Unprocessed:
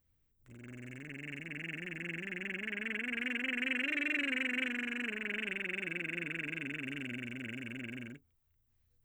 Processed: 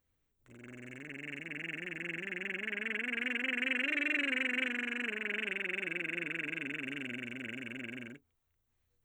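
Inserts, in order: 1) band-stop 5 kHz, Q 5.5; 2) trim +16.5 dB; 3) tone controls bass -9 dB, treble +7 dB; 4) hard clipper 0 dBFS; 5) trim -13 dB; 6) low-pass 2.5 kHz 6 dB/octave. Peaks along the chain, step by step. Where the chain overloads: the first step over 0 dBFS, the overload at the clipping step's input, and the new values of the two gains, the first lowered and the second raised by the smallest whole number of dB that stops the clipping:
-20.5 dBFS, -4.0 dBFS, -4.0 dBFS, -4.0 dBFS, -17.0 dBFS, -19.0 dBFS; nothing clips

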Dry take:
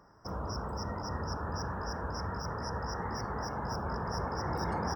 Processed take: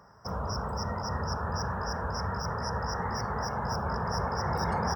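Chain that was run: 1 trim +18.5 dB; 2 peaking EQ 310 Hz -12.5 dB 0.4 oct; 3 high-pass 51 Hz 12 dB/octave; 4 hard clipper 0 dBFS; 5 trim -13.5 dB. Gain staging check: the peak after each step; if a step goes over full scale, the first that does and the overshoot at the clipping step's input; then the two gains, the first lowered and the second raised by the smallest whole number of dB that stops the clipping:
-2.5 dBFS, -3.5 dBFS, -4.0 dBFS, -4.0 dBFS, -17.5 dBFS; nothing clips

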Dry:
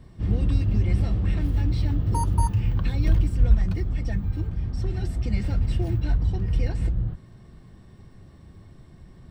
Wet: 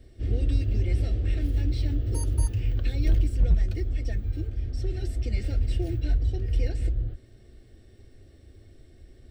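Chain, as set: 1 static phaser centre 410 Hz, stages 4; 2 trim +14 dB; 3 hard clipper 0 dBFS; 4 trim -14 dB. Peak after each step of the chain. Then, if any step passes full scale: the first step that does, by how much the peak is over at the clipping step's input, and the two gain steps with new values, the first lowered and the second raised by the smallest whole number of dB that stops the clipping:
-8.5 dBFS, +5.5 dBFS, 0.0 dBFS, -14.0 dBFS; step 2, 5.5 dB; step 2 +8 dB, step 4 -8 dB

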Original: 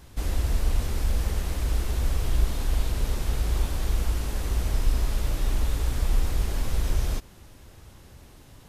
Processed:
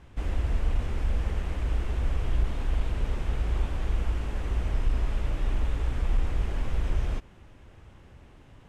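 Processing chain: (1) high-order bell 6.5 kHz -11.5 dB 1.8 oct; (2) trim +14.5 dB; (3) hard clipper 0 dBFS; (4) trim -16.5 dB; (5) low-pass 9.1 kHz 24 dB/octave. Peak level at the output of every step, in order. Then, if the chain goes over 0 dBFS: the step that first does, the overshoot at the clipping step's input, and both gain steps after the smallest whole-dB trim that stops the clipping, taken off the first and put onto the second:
-10.0 dBFS, +4.5 dBFS, 0.0 dBFS, -16.5 dBFS, -16.5 dBFS; step 2, 4.5 dB; step 2 +9.5 dB, step 4 -11.5 dB

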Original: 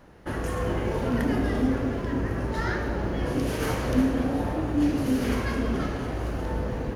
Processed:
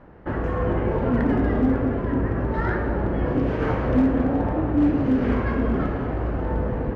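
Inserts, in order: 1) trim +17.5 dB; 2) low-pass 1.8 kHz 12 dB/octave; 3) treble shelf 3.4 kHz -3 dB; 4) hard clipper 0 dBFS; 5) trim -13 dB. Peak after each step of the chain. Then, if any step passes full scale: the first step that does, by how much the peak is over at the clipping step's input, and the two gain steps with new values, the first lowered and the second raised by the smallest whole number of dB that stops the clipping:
+6.5 dBFS, +6.0 dBFS, +6.0 dBFS, 0.0 dBFS, -13.0 dBFS; step 1, 6.0 dB; step 1 +11.5 dB, step 5 -7 dB

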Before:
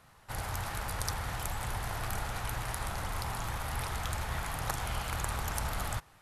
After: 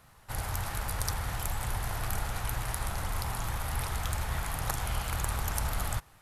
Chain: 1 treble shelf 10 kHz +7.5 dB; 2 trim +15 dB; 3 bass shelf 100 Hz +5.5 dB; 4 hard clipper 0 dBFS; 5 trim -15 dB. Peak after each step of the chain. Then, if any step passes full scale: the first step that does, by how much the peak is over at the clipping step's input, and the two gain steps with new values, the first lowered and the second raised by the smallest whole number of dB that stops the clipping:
-11.5 dBFS, +3.5 dBFS, +3.5 dBFS, 0.0 dBFS, -15.0 dBFS; step 2, 3.5 dB; step 2 +11 dB, step 5 -11 dB

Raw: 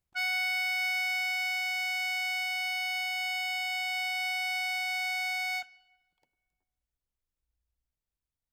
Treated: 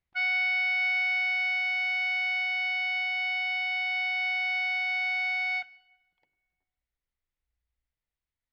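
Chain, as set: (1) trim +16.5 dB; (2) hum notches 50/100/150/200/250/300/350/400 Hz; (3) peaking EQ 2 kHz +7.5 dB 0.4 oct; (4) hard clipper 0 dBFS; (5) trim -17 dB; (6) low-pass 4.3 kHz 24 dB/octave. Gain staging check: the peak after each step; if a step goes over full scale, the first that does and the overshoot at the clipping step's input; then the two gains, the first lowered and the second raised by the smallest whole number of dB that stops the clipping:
-5.0 dBFS, -5.0 dBFS, -3.0 dBFS, -3.0 dBFS, -20.0 dBFS, -21.0 dBFS; nothing clips

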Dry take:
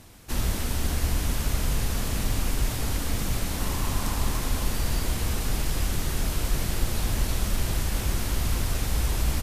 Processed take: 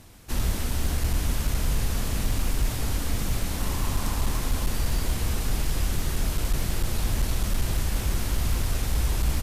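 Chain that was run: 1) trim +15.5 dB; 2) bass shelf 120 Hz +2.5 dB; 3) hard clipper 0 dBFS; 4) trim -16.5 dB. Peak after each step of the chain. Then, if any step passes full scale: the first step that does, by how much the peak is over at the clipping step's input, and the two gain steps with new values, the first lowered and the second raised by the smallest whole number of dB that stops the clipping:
+4.5 dBFS, +6.5 dBFS, 0.0 dBFS, -16.5 dBFS; step 1, 6.5 dB; step 1 +8.5 dB, step 4 -9.5 dB

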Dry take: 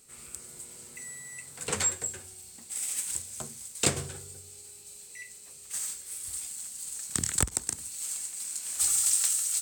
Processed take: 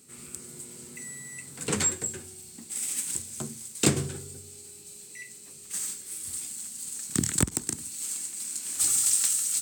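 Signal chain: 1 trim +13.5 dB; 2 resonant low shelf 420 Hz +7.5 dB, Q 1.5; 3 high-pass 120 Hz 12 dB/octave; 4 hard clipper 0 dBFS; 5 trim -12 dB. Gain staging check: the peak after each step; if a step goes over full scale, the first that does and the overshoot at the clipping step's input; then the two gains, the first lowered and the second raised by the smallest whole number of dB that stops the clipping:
+5.5 dBFS, +7.5 dBFS, +8.0 dBFS, 0.0 dBFS, -12.0 dBFS; step 1, 8.0 dB; step 1 +5.5 dB, step 5 -4 dB

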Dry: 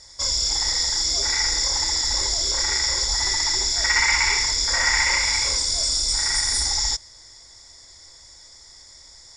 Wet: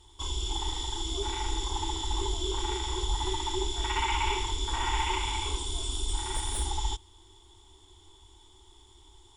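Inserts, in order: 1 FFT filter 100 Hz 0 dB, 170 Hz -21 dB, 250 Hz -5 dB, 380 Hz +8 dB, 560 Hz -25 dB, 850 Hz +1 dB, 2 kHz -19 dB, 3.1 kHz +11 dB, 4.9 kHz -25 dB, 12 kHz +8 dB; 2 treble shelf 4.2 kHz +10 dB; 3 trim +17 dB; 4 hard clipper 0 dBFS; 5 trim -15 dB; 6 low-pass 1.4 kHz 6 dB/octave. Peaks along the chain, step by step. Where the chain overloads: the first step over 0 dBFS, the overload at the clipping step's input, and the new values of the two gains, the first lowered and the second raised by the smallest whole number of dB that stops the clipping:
-15.0 dBFS, -7.0 dBFS, +10.0 dBFS, 0.0 dBFS, -15.0 dBFS, -16.5 dBFS; step 3, 10.0 dB; step 3 +7 dB, step 5 -5 dB

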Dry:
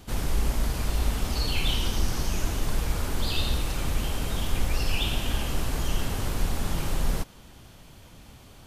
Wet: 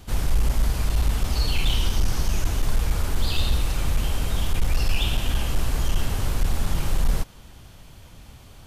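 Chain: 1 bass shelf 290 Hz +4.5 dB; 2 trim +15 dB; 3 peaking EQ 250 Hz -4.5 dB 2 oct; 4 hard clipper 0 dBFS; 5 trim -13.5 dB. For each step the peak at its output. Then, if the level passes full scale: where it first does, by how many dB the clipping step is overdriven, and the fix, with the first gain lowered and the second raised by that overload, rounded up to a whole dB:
-8.0 dBFS, +7.0 dBFS, +6.5 dBFS, 0.0 dBFS, -13.5 dBFS; step 2, 6.5 dB; step 2 +8 dB, step 5 -6.5 dB

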